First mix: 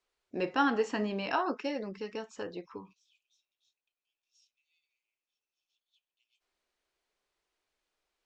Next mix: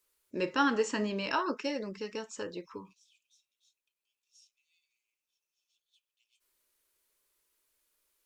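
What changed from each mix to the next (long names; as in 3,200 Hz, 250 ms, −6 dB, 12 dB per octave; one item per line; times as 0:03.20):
first voice: add Butterworth band-reject 740 Hz, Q 4.4
master: remove high-frequency loss of the air 120 metres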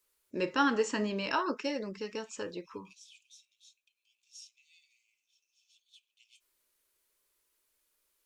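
second voice +11.5 dB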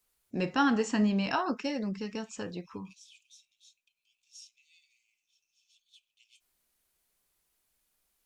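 first voice: remove Butterworth band-reject 740 Hz, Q 4.4
master: add low shelf with overshoot 270 Hz +7.5 dB, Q 1.5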